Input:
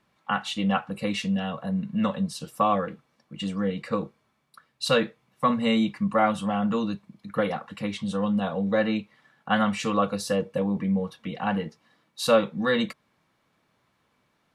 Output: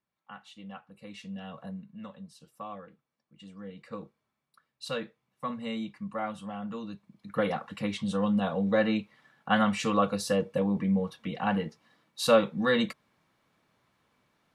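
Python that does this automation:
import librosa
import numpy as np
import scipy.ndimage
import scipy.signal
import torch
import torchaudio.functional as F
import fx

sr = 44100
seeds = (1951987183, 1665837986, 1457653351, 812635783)

y = fx.gain(x, sr, db=fx.line((0.94, -20.0), (1.65, -9.0), (1.89, -18.5), (3.46, -18.5), (4.02, -12.0), (6.83, -12.0), (7.49, -1.5)))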